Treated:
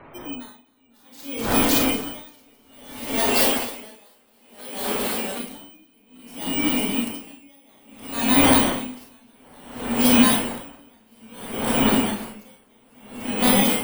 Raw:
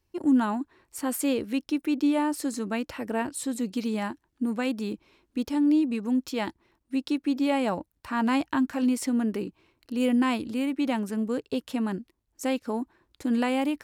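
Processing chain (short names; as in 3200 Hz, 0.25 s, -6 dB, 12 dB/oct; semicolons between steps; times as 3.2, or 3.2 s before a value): FFT order left unsorted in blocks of 16 samples; wind noise 620 Hz -34 dBFS; spectral gate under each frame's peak -30 dB strong; tilt shelf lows -6 dB; AGC gain up to 8 dB; on a send: echo with dull and thin repeats by turns 0.124 s, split 950 Hz, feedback 90%, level -9 dB; on the sum: Schroeder reverb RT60 0.35 s, combs from 25 ms, DRR 0.5 dB; echoes that change speed 0.5 s, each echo -1 st, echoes 3; 3.2–5.4 resonant low shelf 270 Hz -6 dB, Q 1.5; dB-linear tremolo 0.59 Hz, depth 38 dB; gain -2 dB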